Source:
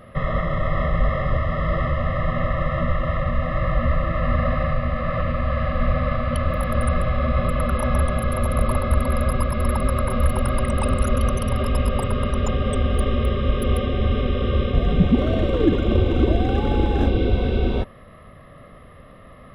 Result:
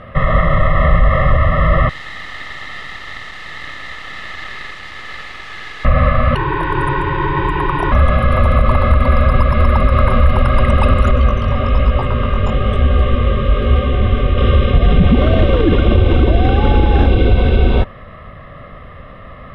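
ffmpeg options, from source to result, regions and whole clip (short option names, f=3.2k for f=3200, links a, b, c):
-filter_complex "[0:a]asettb=1/sr,asplit=3[a][b][c];[a]atrim=end=1.894[d];[b]atrim=start=1.89:end=5.85,asetpts=PTS-STARTPTS,afade=t=in:d=0.004:c=qsin,afade=t=out:st=3.956:d=0.004:c=qsin,asuperpass=centerf=3400:order=8:qfactor=0.62,acrusher=bits=4:dc=4:mix=0:aa=0.000001[e];[c]atrim=start=5.846[f];[d][e]acrossfade=d=0.004:c1=hsin:c2=qsin[g];[g][f]acrossfade=d=0.004:c1=qsin:c2=hsin,asettb=1/sr,asplit=3[h][i][j];[h]atrim=end=6.354[k];[i]atrim=start=6.35:end=7.92,asetpts=PTS-STARTPTS,afade=t=in:d=0.004:c=qsin,afade=t=out:st=1.566:d=0.004:c=qsin,highpass=f=230:p=1,afreqshift=-210[l];[j]atrim=start=7.916[m];[k][l]acrossfade=d=0.004:c1=hsin:c2=qsin[n];[n][m]acrossfade=d=0.004:c1=qsin:c2=hsin,asettb=1/sr,asplit=3[o][p][q];[o]atrim=end=11.114[r];[p]atrim=start=11.11:end=14.38,asetpts=PTS-STARTPTS,afade=t=in:d=0.004:c=qsin,afade=t=out:st=3.266:d=0.004:c=qsin,adynamicsmooth=sensitivity=2.5:basefreq=5k,flanger=delay=15.5:depth=7.3:speed=1.1[s];[q]atrim=start=14.376[t];[r][s]acrossfade=d=0.004:c1=hsin:c2=qsin[u];[u][t]acrossfade=d=0.004:c1=qsin:c2=hsin,lowpass=3.4k,equalizer=f=300:t=o:w=2.2:g=-6,alimiter=level_in=13dB:limit=-1dB:release=50:level=0:latency=1,volume=-1dB"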